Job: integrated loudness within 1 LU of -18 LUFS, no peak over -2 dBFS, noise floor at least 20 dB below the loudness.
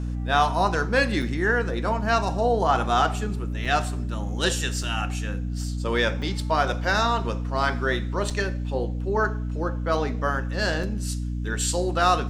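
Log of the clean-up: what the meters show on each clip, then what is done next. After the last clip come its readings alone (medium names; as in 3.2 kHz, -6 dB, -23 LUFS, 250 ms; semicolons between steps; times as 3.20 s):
dropouts 6; longest dropout 4.6 ms; hum 60 Hz; highest harmonic 300 Hz; hum level -26 dBFS; loudness -25.0 LUFS; peak level -6.5 dBFS; loudness target -18.0 LUFS
-> interpolate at 1.22/3.65/4.83/6.22/8.30/10.83 s, 4.6 ms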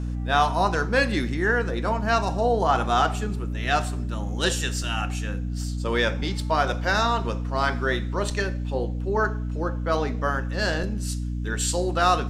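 dropouts 0; hum 60 Hz; highest harmonic 300 Hz; hum level -26 dBFS
-> hum notches 60/120/180/240/300 Hz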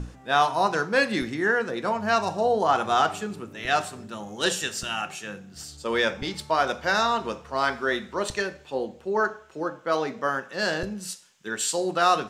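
hum not found; loudness -26.0 LUFS; peak level -7.5 dBFS; loudness target -18.0 LUFS
-> trim +8 dB; peak limiter -2 dBFS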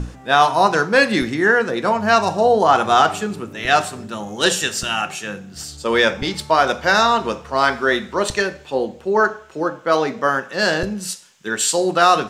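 loudness -18.0 LUFS; peak level -2.0 dBFS; noise floor -42 dBFS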